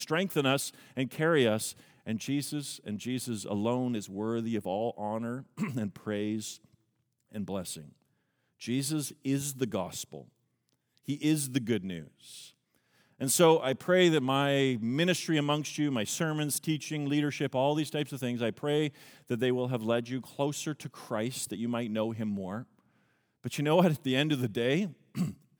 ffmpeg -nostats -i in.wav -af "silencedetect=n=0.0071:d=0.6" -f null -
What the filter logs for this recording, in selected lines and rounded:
silence_start: 6.56
silence_end: 7.34 | silence_duration: 0.78
silence_start: 7.86
silence_end: 8.62 | silence_duration: 0.76
silence_start: 10.22
silence_end: 11.08 | silence_duration: 0.86
silence_start: 12.47
silence_end: 13.21 | silence_duration: 0.74
silence_start: 22.63
silence_end: 23.44 | silence_duration: 0.82